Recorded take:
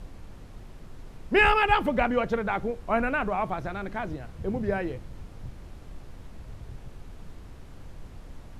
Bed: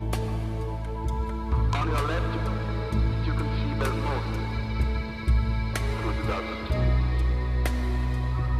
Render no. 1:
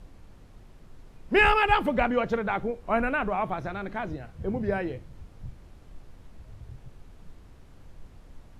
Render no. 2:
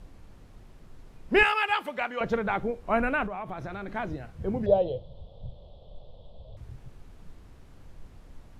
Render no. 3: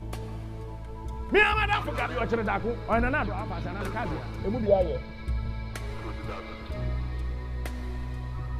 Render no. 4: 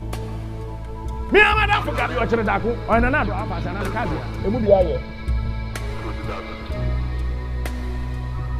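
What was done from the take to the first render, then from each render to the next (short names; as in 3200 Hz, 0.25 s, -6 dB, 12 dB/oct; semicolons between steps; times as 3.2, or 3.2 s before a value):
noise print and reduce 6 dB
1.43–2.21 HPF 1400 Hz 6 dB/oct; 3.26–3.88 compressor, threshold -32 dBFS; 4.66–6.57 EQ curve 160 Hz 0 dB, 310 Hz -10 dB, 560 Hz +13 dB, 1100 Hz -7 dB, 1600 Hz -26 dB, 2300 Hz -21 dB, 3400 Hz +11 dB, 6400 Hz -21 dB
add bed -8 dB
gain +7.5 dB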